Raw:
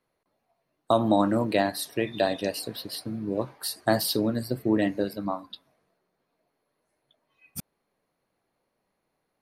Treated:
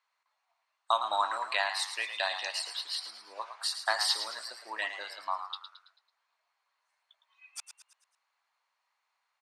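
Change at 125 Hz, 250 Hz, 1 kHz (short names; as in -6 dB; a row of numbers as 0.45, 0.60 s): under -40 dB, -36.5 dB, -1.5 dB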